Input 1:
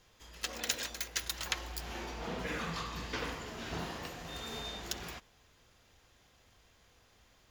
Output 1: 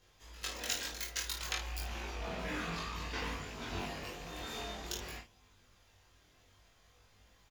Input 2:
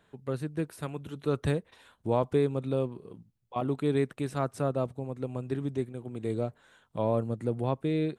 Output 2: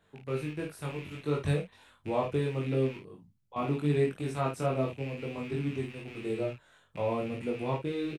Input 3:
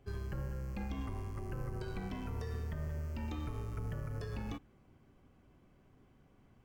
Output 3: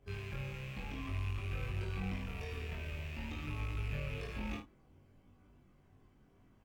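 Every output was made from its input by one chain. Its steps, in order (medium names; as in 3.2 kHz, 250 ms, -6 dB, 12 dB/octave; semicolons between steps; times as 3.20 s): rattle on loud lows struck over -43 dBFS, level -34 dBFS; chorus voices 2, 0.55 Hz, delay 22 ms, depth 1.2 ms; early reflections 20 ms -4.5 dB, 53 ms -7.5 dB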